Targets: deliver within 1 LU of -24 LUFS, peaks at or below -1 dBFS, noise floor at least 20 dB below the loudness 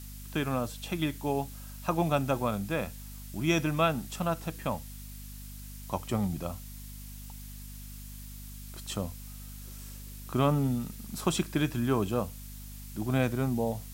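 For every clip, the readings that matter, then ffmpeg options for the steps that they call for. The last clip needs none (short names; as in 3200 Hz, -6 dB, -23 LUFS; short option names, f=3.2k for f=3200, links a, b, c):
hum 50 Hz; harmonics up to 250 Hz; hum level -42 dBFS; noise floor -44 dBFS; noise floor target -52 dBFS; loudness -31.5 LUFS; peak -12.5 dBFS; loudness target -24.0 LUFS
-> -af "bandreject=f=50:t=h:w=6,bandreject=f=100:t=h:w=6,bandreject=f=150:t=h:w=6,bandreject=f=200:t=h:w=6,bandreject=f=250:t=h:w=6"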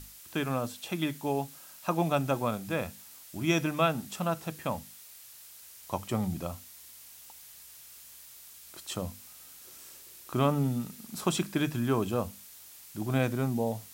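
hum none; noise floor -51 dBFS; noise floor target -52 dBFS
-> -af "afftdn=nr=6:nf=-51"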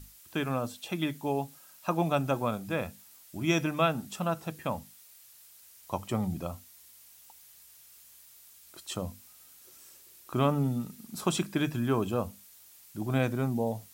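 noise floor -56 dBFS; loudness -31.5 LUFS; peak -12.0 dBFS; loudness target -24.0 LUFS
-> -af "volume=7.5dB"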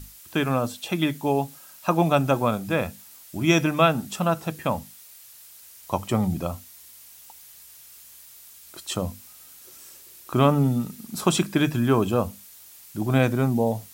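loudness -24.0 LUFS; peak -4.5 dBFS; noise floor -48 dBFS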